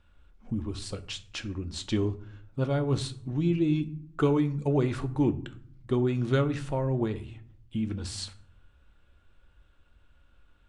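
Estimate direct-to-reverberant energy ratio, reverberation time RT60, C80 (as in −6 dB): 8.5 dB, 0.60 s, 20.5 dB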